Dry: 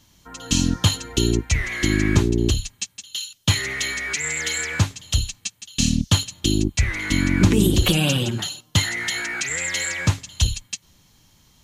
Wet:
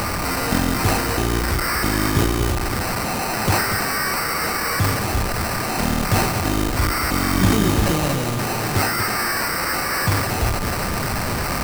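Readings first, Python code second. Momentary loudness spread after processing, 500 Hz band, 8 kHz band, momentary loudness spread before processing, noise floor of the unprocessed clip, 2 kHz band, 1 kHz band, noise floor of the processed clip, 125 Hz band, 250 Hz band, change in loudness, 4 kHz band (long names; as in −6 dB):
4 LU, +4.5 dB, −0.5 dB, 11 LU, −58 dBFS, +3.0 dB, +14.5 dB, −24 dBFS, 0.0 dB, +0.5 dB, +1.5 dB, −2.0 dB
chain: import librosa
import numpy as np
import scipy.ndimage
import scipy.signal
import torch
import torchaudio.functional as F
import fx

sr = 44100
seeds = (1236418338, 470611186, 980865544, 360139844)

p1 = fx.delta_mod(x, sr, bps=32000, step_db=-14.5)
p2 = fx.sample_hold(p1, sr, seeds[0], rate_hz=3400.0, jitter_pct=0)
p3 = p2 + 10.0 ** (-29.0 / 20.0) * np.sin(2.0 * np.pi * 1200.0 * np.arange(len(p2)) / sr)
p4 = fx.high_shelf(p3, sr, hz=4500.0, db=6.0)
p5 = p4 + fx.echo_single(p4, sr, ms=238, db=-8.0, dry=0)
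p6 = fx.sustainer(p5, sr, db_per_s=42.0)
y = F.gain(torch.from_numpy(p6), -3.0).numpy()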